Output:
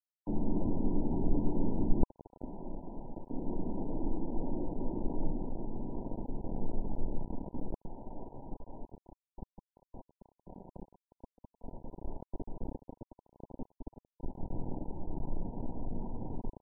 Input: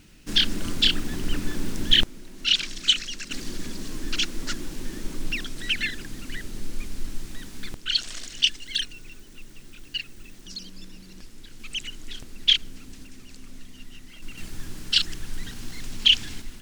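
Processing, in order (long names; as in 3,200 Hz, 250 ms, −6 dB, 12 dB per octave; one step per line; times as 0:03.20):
low-shelf EQ 150 Hz −4.5 dB
bit reduction 6 bits
linear-phase brick-wall low-pass 1,000 Hz
level +1.5 dB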